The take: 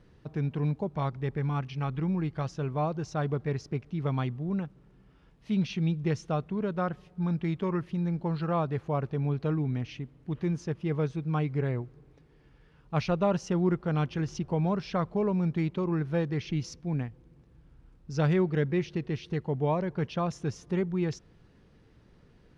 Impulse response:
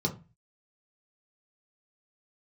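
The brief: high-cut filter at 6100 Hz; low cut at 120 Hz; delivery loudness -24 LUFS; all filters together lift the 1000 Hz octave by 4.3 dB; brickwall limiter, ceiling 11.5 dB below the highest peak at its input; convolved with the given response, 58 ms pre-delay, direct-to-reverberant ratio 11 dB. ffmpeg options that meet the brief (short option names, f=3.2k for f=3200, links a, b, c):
-filter_complex "[0:a]highpass=120,lowpass=6.1k,equalizer=f=1k:t=o:g=5.5,alimiter=limit=-23dB:level=0:latency=1,asplit=2[a][b];[1:a]atrim=start_sample=2205,adelay=58[c];[b][c]afir=irnorm=-1:irlink=0,volume=-17.5dB[d];[a][d]amix=inputs=2:normalize=0,volume=6.5dB"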